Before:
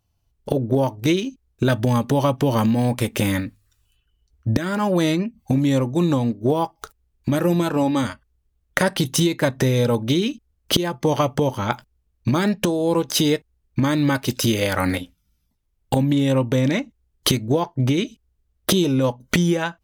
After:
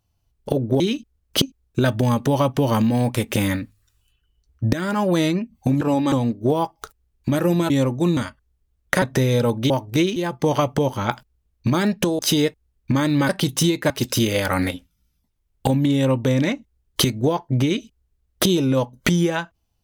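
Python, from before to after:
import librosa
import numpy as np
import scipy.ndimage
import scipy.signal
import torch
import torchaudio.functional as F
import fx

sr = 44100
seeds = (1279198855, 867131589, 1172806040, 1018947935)

y = fx.edit(x, sr, fx.swap(start_s=0.8, length_s=0.46, other_s=10.15, other_length_s=0.62),
    fx.swap(start_s=5.65, length_s=0.47, other_s=7.7, other_length_s=0.31),
    fx.move(start_s=8.86, length_s=0.61, to_s=14.17),
    fx.cut(start_s=12.8, length_s=0.27), tone=tone)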